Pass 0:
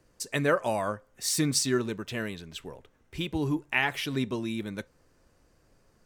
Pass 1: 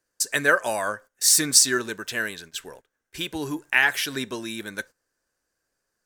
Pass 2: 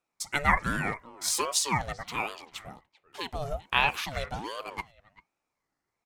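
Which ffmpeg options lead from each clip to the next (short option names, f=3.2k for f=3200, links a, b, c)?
-af "bass=f=250:g=-10,treble=f=4k:g=11,agate=range=-17dB:threshold=-47dB:ratio=16:detection=peak,equalizer=f=1.6k:t=o:w=0.37:g=11.5,volume=2dB"
-filter_complex "[0:a]highshelf=f=4.2k:g=-11.5,asplit=2[a][b];[b]adelay=390,highpass=300,lowpass=3.4k,asoftclip=type=hard:threshold=-15.5dB,volume=-19dB[c];[a][c]amix=inputs=2:normalize=0,aeval=exprs='val(0)*sin(2*PI*570*n/s+570*0.5/1.3*sin(2*PI*1.3*n/s))':c=same"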